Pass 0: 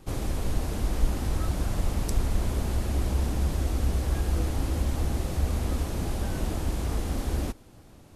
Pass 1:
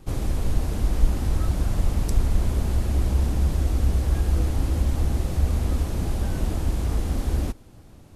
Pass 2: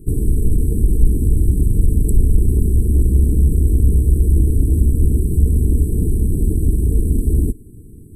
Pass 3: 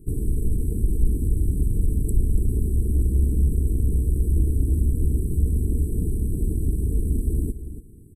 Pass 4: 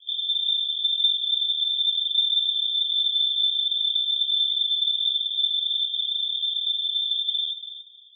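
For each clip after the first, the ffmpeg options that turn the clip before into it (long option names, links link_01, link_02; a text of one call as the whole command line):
ffmpeg -i in.wav -af "lowshelf=frequency=200:gain=5.5" out.wav
ffmpeg -i in.wav -af "afftfilt=real='re*(1-between(b*sr/4096,470,7700))':imag='im*(1-between(b*sr/4096,470,7700))':win_size=4096:overlap=0.75,aeval=exprs='(tanh(3.55*val(0)+0.4)-tanh(0.4))/3.55':channel_layout=same,acontrast=82,volume=3.5dB" out.wav
ffmpeg -i in.wav -af "aecho=1:1:285:0.237,volume=-7.5dB" out.wav
ffmpeg -i in.wav -af "lowpass=frequency=3100:width_type=q:width=0.5098,lowpass=frequency=3100:width_type=q:width=0.6013,lowpass=frequency=3100:width_type=q:width=0.9,lowpass=frequency=3100:width_type=q:width=2.563,afreqshift=-3600,volume=-4.5dB" out.wav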